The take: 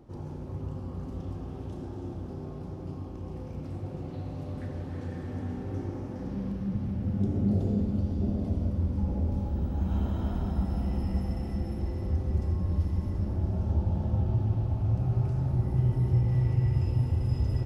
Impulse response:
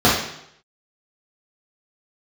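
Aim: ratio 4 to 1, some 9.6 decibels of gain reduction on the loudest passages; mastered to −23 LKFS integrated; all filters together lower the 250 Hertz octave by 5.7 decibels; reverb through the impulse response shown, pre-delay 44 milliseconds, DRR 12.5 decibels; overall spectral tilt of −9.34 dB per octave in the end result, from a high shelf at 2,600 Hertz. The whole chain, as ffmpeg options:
-filter_complex "[0:a]equalizer=frequency=250:width_type=o:gain=-8.5,highshelf=frequency=2600:gain=-8,acompressor=threshold=-34dB:ratio=4,asplit=2[link_01][link_02];[1:a]atrim=start_sample=2205,adelay=44[link_03];[link_02][link_03]afir=irnorm=-1:irlink=0,volume=-37dB[link_04];[link_01][link_04]amix=inputs=2:normalize=0,volume=15dB"

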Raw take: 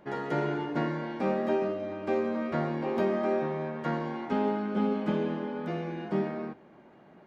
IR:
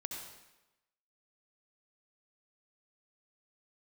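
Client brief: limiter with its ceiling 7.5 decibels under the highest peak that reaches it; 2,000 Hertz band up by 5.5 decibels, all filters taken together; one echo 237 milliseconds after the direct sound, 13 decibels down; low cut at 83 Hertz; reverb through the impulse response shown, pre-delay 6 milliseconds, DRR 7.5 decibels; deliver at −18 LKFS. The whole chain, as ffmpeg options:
-filter_complex "[0:a]highpass=83,equalizer=frequency=2000:width_type=o:gain=7,alimiter=limit=-23dB:level=0:latency=1,aecho=1:1:237:0.224,asplit=2[link_01][link_02];[1:a]atrim=start_sample=2205,adelay=6[link_03];[link_02][link_03]afir=irnorm=-1:irlink=0,volume=-7dB[link_04];[link_01][link_04]amix=inputs=2:normalize=0,volume=14dB"

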